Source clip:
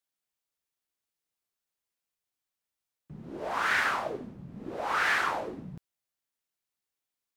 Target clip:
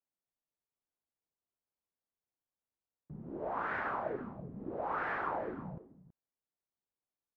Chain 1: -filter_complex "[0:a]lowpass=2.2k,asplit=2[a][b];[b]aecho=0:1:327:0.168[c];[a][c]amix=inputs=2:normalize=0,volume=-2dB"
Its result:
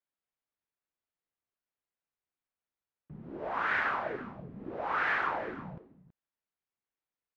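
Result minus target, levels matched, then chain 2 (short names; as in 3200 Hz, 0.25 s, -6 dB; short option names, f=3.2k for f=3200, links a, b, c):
2000 Hz band +3.0 dB
-filter_complex "[0:a]lowpass=960,asplit=2[a][b];[b]aecho=0:1:327:0.168[c];[a][c]amix=inputs=2:normalize=0,volume=-2dB"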